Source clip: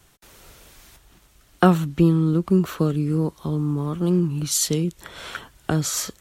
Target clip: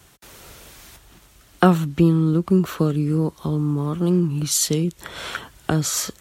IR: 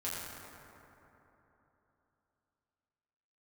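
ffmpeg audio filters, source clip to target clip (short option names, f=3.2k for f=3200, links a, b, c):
-filter_complex "[0:a]highpass=42,asplit=2[a][b];[b]acompressor=threshold=-32dB:ratio=6,volume=-2dB[c];[a][c]amix=inputs=2:normalize=0"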